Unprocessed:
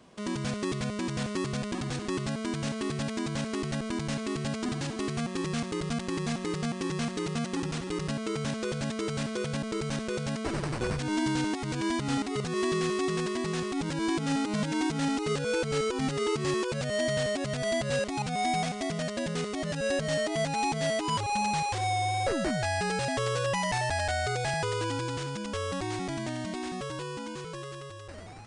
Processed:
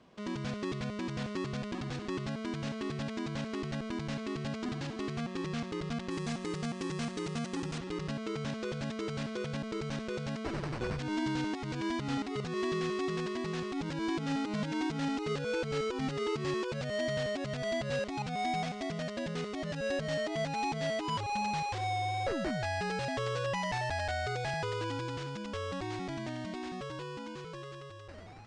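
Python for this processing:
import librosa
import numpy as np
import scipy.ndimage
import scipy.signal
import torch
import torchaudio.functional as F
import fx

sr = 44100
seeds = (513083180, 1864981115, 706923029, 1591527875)

y = fx.lowpass(x, sr, hz=fx.steps((0.0, 4900.0), (6.11, 9000.0), (7.78, 5200.0)), slope=12)
y = y * librosa.db_to_amplitude(-4.5)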